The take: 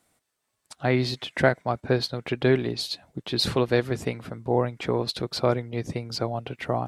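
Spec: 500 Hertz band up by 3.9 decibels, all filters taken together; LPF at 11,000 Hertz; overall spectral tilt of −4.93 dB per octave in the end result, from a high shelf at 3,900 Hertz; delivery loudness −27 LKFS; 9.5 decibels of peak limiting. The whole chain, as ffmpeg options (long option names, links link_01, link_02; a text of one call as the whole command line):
ffmpeg -i in.wav -af "lowpass=11000,equalizer=frequency=500:width_type=o:gain=5,highshelf=frequency=3900:gain=-6.5,volume=1dB,alimiter=limit=-12dB:level=0:latency=1" out.wav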